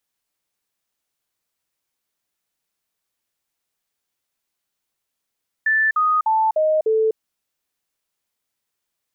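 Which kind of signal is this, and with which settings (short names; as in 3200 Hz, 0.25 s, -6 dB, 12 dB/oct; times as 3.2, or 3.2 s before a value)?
stepped sine 1760 Hz down, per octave 2, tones 5, 0.25 s, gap 0.05 s -14.5 dBFS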